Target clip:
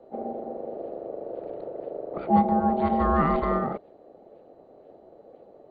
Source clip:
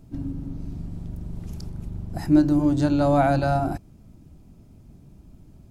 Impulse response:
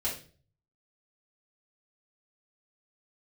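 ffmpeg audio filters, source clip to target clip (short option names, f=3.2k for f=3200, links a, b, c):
-filter_complex "[0:a]aeval=exprs='val(0)*sin(2*PI*510*n/s)':c=same,acrossover=split=210|430|2600[a][b][c][d];[d]acrusher=samples=34:mix=1:aa=0.000001:lfo=1:lforange=54.4:lforate=2[e];[a][b][c][e]amix=inputs=4:normalize=0" -ar 16000 -c:a mp2 -b:a 48k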